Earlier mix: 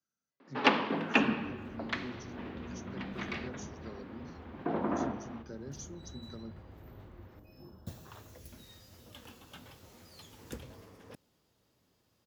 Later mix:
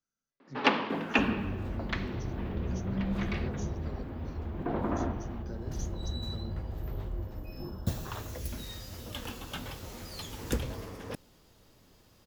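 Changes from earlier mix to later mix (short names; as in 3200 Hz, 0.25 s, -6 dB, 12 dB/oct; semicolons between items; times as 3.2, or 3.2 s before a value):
second sound +11.5 dB; master: remove HPF 77 Hz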